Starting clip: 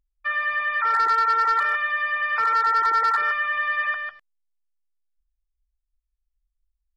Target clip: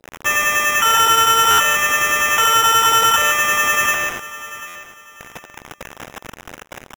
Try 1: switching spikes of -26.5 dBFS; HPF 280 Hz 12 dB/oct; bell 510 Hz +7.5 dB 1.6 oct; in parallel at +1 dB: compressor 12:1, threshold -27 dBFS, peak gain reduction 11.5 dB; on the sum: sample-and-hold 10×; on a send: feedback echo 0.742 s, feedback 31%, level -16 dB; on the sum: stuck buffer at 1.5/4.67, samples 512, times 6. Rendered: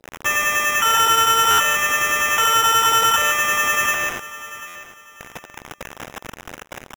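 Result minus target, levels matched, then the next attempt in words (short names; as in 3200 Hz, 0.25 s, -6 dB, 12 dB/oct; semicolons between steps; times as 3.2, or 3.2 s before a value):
compressor: peak gain reduction +7 dB
switching spikes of -26.5 dBFS; HPF 280 Hz 12 dB/oct; bell 510 Hz +7.5 dB 1.6 oct; in parallel at +1 dB: compressor 12:1, threshold -19.5 dBFS, peak gain reduction 4.5 dB; on the sum: sample-and-hold 10×; on a send: feedback echo 0.742 s, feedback 31%, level -16 dB; on the sum: stuck buffer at 1.5/4.67, samples 512, times 6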